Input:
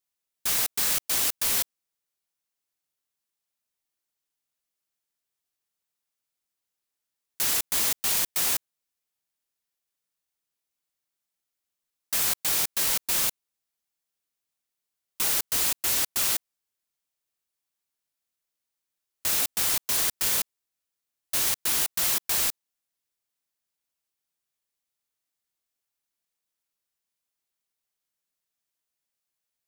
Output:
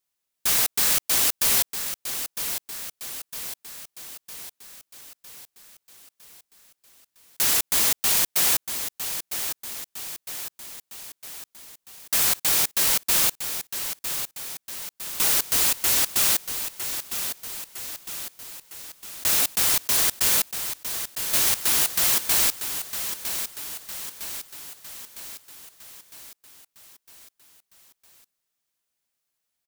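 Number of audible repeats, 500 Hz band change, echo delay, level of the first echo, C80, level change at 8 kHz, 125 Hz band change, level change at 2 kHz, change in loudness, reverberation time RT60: 6, +4.5 dB, 957 ms, -9.0 dB, no reverb, +4.5 dB, +4.5 dB, +4.5 dB, +1.5 dB, no reverb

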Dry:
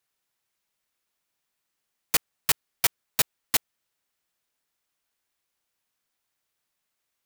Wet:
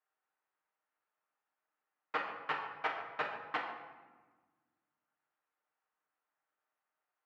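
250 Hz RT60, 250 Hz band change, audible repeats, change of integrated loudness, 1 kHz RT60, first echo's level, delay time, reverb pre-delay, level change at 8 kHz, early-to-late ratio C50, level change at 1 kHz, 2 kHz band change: 2.0 s, -8.5 dB, no echo, -12.5 dB, 1.3 s, no echo, no echo, 7 ms, under -40 dB, 4.0 dB, +1.0 dB, -5.0 dB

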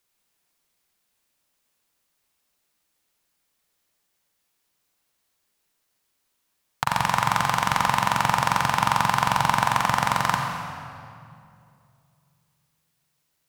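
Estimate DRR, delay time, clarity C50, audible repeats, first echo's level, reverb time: 1.5 dB, no echo, 2.0 dB, no echo, no echo, 2.5 s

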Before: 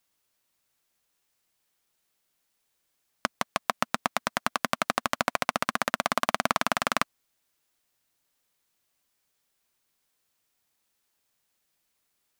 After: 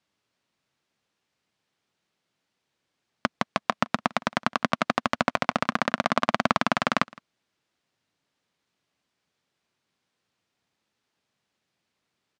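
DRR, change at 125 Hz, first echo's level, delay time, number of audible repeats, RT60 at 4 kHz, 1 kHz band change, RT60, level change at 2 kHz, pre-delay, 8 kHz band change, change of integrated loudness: no reverb, +7.0 dB, -24.0 dB, 163 ms, 1, no reverb, +2.0 dB, no reverb, +1.5 dB, no reverb, -7.0 dB, +2.0 dB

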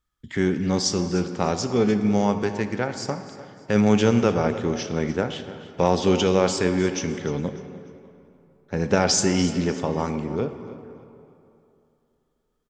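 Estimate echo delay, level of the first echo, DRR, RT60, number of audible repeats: 299 ms, -16.5 dB, 8.0 dB, 2.8 s, 2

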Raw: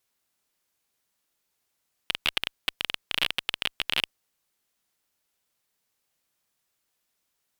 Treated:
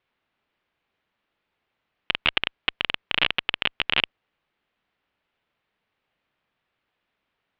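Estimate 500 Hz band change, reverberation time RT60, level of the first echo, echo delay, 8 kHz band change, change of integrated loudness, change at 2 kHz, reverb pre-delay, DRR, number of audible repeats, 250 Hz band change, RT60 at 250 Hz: +6.5 dB, no reverb, no echo, no echo, under -20 dB, +4.0 dB, +6.0 dB, no reverb, no reverb, no echo, +6.5 dB, no reverb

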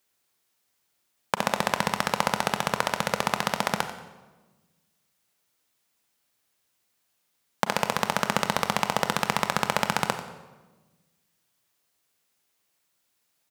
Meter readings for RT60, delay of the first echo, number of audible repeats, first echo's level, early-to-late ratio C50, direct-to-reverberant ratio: 1.2 s, 91 ms, 1, -13.5 dB, 8.5 dB, 7.5 dB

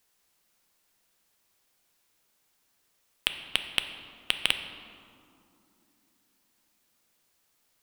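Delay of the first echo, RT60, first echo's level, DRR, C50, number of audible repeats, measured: no echo, 2.8 s, no echo, 7.0 dB, 8.5 dB, no echo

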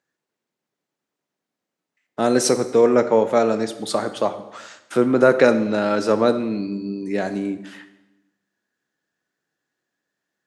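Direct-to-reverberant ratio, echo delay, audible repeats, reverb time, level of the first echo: 10.0 dB, no echo, no echo, 0.95 s, no echo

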